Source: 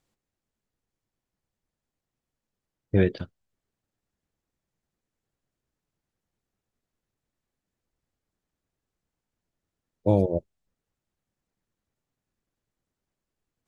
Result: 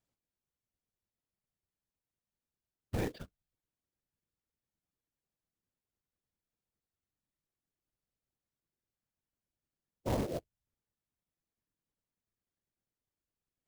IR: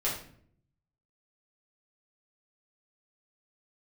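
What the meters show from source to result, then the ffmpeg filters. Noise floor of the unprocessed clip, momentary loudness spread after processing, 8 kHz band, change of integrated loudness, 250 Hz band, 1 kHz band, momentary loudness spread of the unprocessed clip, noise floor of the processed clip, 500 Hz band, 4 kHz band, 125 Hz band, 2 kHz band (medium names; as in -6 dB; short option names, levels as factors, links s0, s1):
under -85 dBFS, 15 LU, no reading, -12.5 dB, -13.0 dB, -5.5 dB, 15 LU, under -85 dBFS, -13.5 dB, -2.5 dB, -13.0 dB, -9.5 dB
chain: -af "asoftclip=type=hard:threshold=0.15,afftfilt=real='hypot(re,im)*cos(2*PI*random(0))':imag='hypot(re,im)*sin(2*PI*random(1))':win_size=512:overlap=0.75,acrusher=bits=3:mode=log:mix=0:aa=0.000001,volume=0.596"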